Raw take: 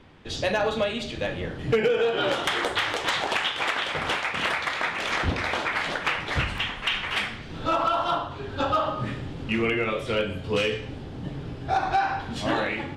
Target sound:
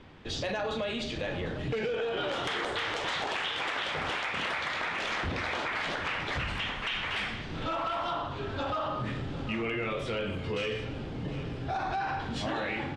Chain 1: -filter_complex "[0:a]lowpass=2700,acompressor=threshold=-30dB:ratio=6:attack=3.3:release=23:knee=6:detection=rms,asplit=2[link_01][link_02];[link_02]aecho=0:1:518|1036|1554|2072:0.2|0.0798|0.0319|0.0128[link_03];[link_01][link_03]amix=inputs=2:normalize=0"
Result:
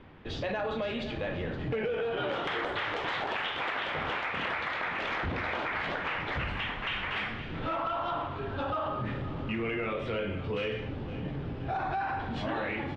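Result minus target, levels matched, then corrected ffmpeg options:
8,000 Hz band −13.0 dB; echo 233 ms early
-filter_complex "[0:a]lowpass=7700,acompressor=threshold=-30dB:ratio=6:attack=3.3:release=23:knee=6:detection=rms,asplit=2[link_01][link_02];[link_02]aecho=0:1:751|1502|2253|3004:0.2|0.0798|0.0319|0.0128[link_03];[link_01][link_03]amix=inputs=2:normalize=0"

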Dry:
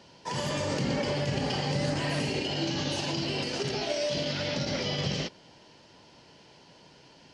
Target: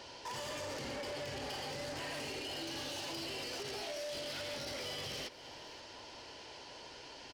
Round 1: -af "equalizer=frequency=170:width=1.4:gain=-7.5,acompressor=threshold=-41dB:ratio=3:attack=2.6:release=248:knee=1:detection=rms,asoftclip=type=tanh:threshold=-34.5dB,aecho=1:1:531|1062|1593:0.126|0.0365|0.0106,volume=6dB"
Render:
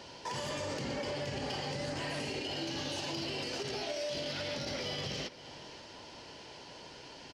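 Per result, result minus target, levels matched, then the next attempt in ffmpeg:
soft clipping: distortion −11 dB; 125 Hz band +4.0 dB
-af "equalizer=frequency=170:width=1.4:gain=-7.5,acompressor=threshold=-41dB:ratio=3:attack=2.6:release=248:knee=1:detection=rms,asoftclip=type=tanh:threshold=-44.5dB,aecho=1:1:531|1062|1593:0.126|0.0365|0.0106,volume=6dB"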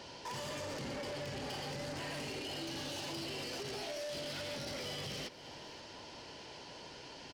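125 Hz band +4.5 dB
-af "equalizer=frequency=170:width=1.4:gain=-17,acompressor=threshold=-41dB:ratio=3:attack=2.6:release=248:knee=1:detection=rms,asoftclip=type=tanh:threshold=-44.5dB,aecho=1:1:531|1062|1593:0.126|0.0365|0.0106,volume=6dB"

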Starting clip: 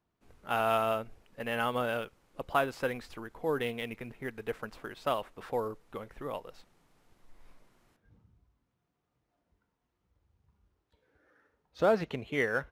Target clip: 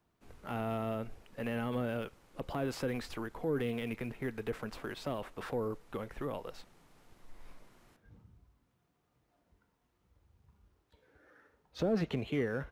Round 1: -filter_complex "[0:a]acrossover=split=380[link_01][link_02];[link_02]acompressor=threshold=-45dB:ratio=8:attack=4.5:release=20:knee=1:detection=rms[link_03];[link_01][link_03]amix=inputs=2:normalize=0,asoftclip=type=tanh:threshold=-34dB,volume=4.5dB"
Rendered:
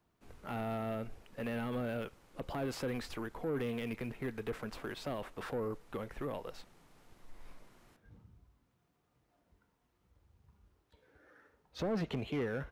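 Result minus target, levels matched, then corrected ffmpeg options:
soft clipping: distortion +11 dB
-filter_complex "[0:a]acrossover=split=380[link_01][link_02];[link_02]acompressor=threshold=-45dB:ratio=8:attack=4.5:release=20:knee=1:detection=rms[link_03];[link_01][link_03]amix=inputs=2:normalize=0,asoftclip=type=tanh:threshold=-25.5dB,volume=4.5dB"

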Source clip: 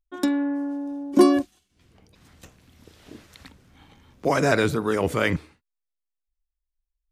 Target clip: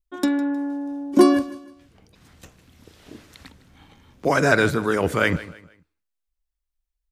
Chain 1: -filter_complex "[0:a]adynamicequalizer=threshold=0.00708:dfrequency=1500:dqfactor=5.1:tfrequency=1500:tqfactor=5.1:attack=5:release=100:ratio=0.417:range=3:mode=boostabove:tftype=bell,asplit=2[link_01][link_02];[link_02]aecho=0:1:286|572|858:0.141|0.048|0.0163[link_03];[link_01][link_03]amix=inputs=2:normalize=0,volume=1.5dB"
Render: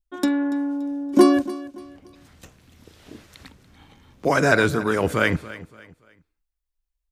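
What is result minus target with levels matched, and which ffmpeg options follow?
echo 130 ms late
-filter_complex "[0:a]adynamicequalizer=threshold=0.00708:dfrequency=1500:dqfactor=5.1:tfrequency=1500:tqfactor=5.1:attack=5:release=100:ratio=0.417:range=3:mode=boostabove:tftype=bell,asplit=2[link_01][link_02];[link_02]aecho=0:1:156|312|468:0.141|0.048|0.0163[link_03];[link_01][link_03]amix=inputs=2:normalize=0,volume=1.5dB"

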